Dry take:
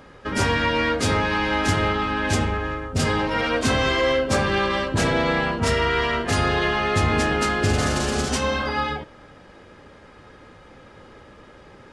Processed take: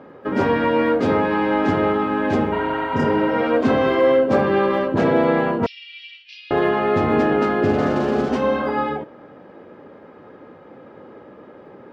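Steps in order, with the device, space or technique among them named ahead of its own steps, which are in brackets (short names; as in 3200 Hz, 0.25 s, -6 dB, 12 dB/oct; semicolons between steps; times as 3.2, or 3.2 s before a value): 2.55–3.29 spectral repair 630–4700 Hz after; early digital voice recorder (BPF 240–3600 Hz; block floating point 7-bit); 5.66–6.51 Chebyshev band-pass 2400–5600 Hz, order 4; tilt shelf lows +9.5 dB, about 1300 Hz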